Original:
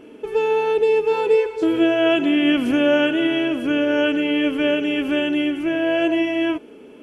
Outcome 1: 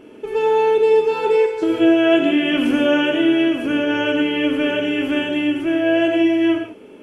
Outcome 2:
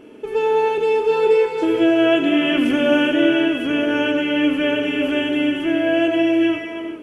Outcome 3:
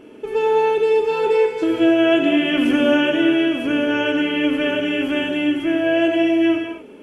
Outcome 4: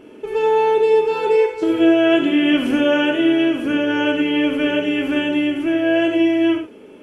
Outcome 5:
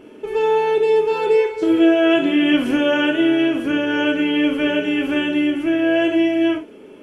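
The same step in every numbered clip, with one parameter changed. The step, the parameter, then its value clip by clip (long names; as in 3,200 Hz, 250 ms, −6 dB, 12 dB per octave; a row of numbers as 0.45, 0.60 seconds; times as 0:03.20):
reverb whose tail is shaped and stops, gate: 180, 460, 280, 120, 80 milliseconds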